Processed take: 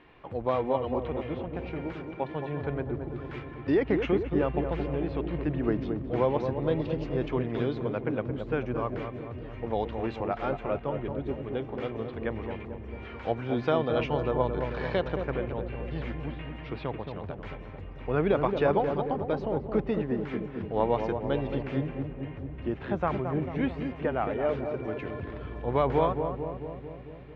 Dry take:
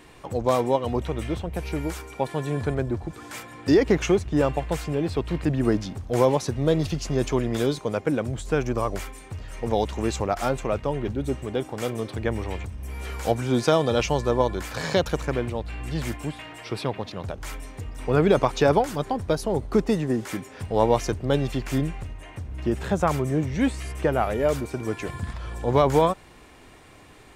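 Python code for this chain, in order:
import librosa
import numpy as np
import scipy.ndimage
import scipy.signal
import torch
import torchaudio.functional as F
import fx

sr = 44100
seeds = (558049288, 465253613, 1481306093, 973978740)

y = scipy.signal.sosfilt(scipy.signal.butter(4, 3100.0, 'lowpass', fs=sr, output='sos'), x)
y = fx.low_shelf(y, sr, hz=220.0, db=-3.5)
y = fx.echo_filtered(y, sr, ms=222, feedback_pct=74, hz=830.0, wet_db=-5)
y = F.gain(torch.from_numpy(y), -5.5).numpy()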